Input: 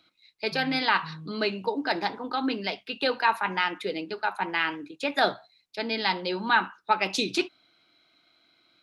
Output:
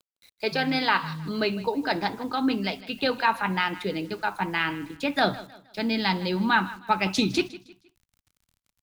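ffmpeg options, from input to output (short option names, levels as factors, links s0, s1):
-af "equalizer=f=360:w=0.64:g=4.5,acrusher=bits=8:mix=0:aa=0.000001,aecho=1:1:157|314|471:0.126|0.0441|0.0154,asubboost=boost=9:cutoff=140"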